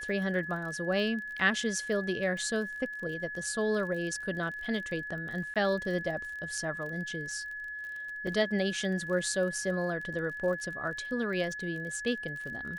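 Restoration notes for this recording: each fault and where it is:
surface crackle 31 per second −39 dBFS
whistle 1,700 Hz −37 dBFS
0:05.54–0:05.56: drop-out 17 ms
0:08.27: drop-out 3.7 ms

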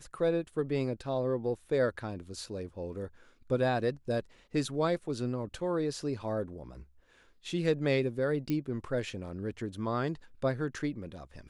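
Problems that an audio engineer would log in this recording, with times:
0:08.50: click −20 dBFS

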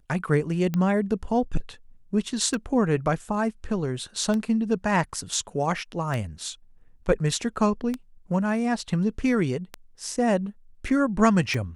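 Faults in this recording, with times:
scratch tick 33 1/3 rpm −15 dBFS

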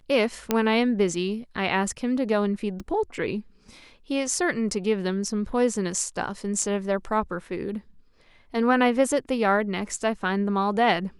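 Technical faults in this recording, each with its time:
0:00.51: click −7 dBFS
0:02.80: click −26 dBFS
0:06.62: drop-out 3.4 ms

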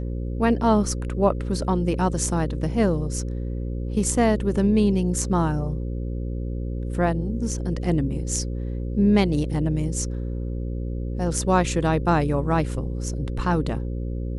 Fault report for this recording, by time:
mains buzz 60 Hz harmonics 9 −28 dBFS

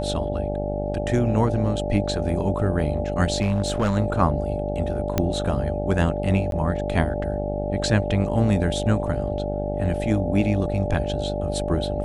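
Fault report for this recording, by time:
mains buzz 50 Hz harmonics 17 −28 dBFS
whistle 590 Hz −28 dBFS
0:03.41–0:03.97: clipping −16.5 dBFS
0:05.18: click −7 dBFS
0:06.51–0:06.52: drop-out 12 ms

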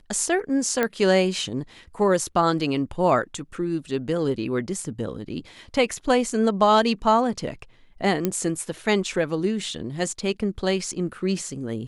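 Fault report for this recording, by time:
0:00.83: click −9 dBFS
0:08.25: click −9 dBFS

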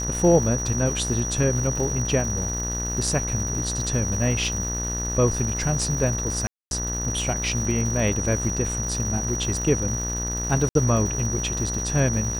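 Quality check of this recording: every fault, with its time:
mains buzz 60 Hz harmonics 33 −30 dBFS
surface crackle 350 per second −32 dBFS
whistle 5,800 Hz −28 dBFS
0:06.47–0:06.71: drop-out 241 ms
0:10.69–0:10.75: drop-out 62 ms

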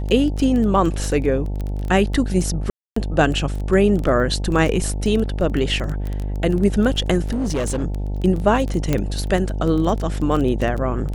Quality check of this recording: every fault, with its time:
mains buzz 50 Hz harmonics 18 −24 dBFS
surface crackle 15 per second −23 dBFS
0:02.70–0:02.96: drop-out 264 ms
0:07.32–0:07.84: clipping −18 dBFS
0:08.93: click −6 dBFS

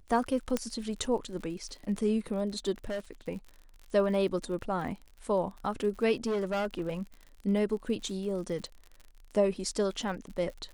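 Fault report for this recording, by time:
surface crackle 58 per second −40 dBFS
0:00.57: click −15 dBFS
0:02.84–0:03.11: clipping −31 dBFS
0:06.26–0:06.94: clipping −27 dBFS

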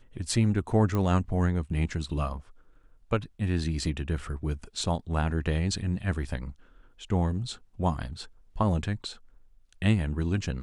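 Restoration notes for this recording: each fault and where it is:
0:00.95: click −17 dBFS

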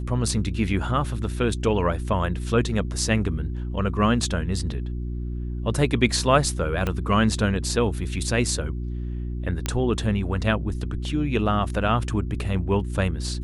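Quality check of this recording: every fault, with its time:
mains hum 60 Hz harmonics 6 −29 dBFS
0:06.87: click −12 dBFS
0:09.66: click −10 dBFS

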